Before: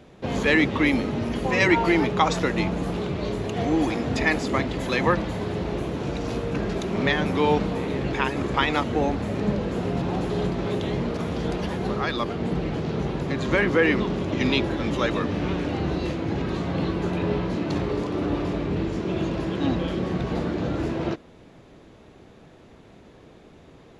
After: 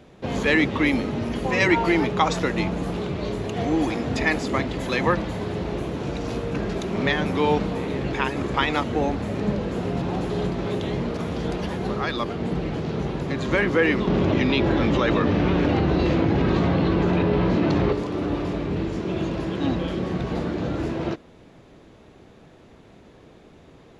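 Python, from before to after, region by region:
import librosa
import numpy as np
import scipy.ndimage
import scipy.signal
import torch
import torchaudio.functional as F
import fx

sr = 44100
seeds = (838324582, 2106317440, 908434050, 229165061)

y = fx.chain(x, sr, fx.lowpass(hz=6200.0, slope=12),
    fx.high_shelf(hz=4700.0, db=-6.0),
    fx.env_flatten(amount_pct=100), at=(14.07, 17.93))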